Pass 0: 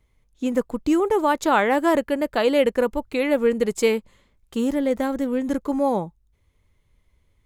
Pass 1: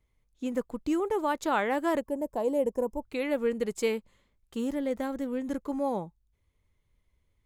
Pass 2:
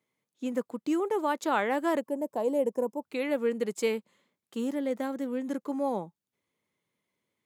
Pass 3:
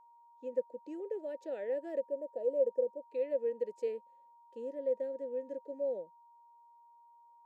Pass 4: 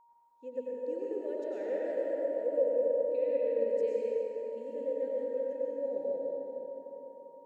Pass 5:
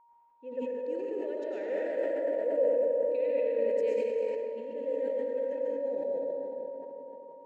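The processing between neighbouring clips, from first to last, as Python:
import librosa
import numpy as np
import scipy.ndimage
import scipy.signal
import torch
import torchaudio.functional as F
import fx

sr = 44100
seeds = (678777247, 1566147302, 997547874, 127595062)

y1 = fx.spec_box(x, sr, start_s=2.0, length_s=1.02, low_hz=1100.0, high_hz=5000.0, gain_db=-17)
y1 = y1 * 10.0 ** (-8.5 / 20.0)
y2 = scipy.signal.sosfilt(scipy.signal.butter(4, 170.0, 'highpass', fs=sr, output='sos'), y1)
y3 = fx.vowel_filter(y2, sr, vowel='e')
y3 = fx.band_shelf(y3, sr, hz=1700.0, db=-11.5, octaves=2.4)
y3 = y3 + 10.0 ** (-60.0 / 20.0) * np.sin(2.0 * np.pi * 940.0 * np.arange(len(y3)) / sr)
y3 = y3 * 10.0 ** (1.5 / 20.0)
y4 = fx.rev_plate(y3, sr, seeds[0], rt60_s=4.3, hf_ratio=0.55, predelay_ms=80, drr_db=-5.5)
y4 = y4 * 10.0 ** (-2.5 / 20.0)
y5 = fx.env_lowpass(y4, sr, base_hz=2300.0, full_db=-27.5)
y5 = fx.peak_eq(y5, sr, hz=2400.0, db=6.5, octaves=1.4)
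y5 = fx.sustainer(y5, sr, db_per_s=22.0)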